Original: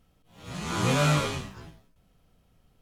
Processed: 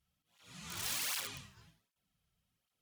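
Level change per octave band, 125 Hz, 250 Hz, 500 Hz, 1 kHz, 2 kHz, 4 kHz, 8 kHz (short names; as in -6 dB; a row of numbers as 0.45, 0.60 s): -27.5, -26.5, -27.0, -19.0, -12.0, -7.0, -3.5 dB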